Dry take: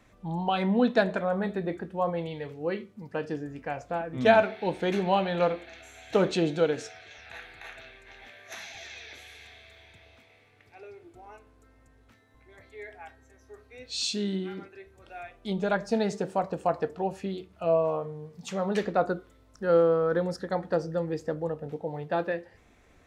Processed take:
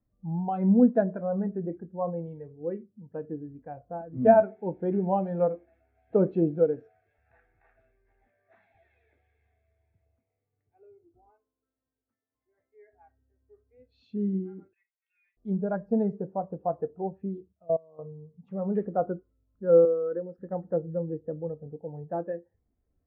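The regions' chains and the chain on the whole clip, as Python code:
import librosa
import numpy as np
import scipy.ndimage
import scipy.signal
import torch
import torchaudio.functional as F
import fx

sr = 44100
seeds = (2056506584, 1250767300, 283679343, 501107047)

y = fx.chain(x, sr, fx.highpass(hz=140.0, slope=6),
    fx.low_shelf(hz=280.0, db=-8.5), at=(11.3, 12.93))
y = fx.chain(y, sr, fx.ellip_bandpass(low_hz=2000.0, high_hz=5600.0, order=3, stop_db=50),
    fx.leveller(passes=3), at=(14.73, 15.37))
y = fx.chain(y, sr, fx.median_filter(points=15),
    fx.level_steps(step_db=22), at=(17.52, 17.99))
y = fx.chain(y, sr, fx.highpass(hz=280.0, slope=12),
    fx.dynamic_eq(hz=850.0, q=1.1, threshold_db=-38.0, ratio=4.0, max_db=-6), at=(19.85, 20.38))
y = scipy.signal.sosfilt(scipy.signal.butter(2, 1600.0, 'lowpass', fs=sr, output='sos'), y)
y = fx.low_shelf(y, sr, hz=420.0, db=6.5)
y = fx.spectral_expand(y, sr, expansion=1.5)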